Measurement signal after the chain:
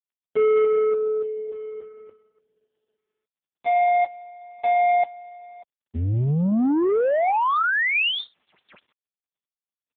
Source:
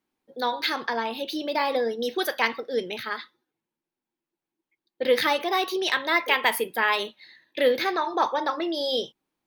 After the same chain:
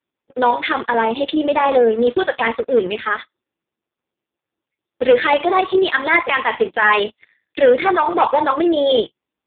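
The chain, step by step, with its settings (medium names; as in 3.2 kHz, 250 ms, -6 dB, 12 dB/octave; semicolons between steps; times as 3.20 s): waveshaping leveller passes 3; trim +2 dB; AMR-NB 4.75 kbps 8 kHz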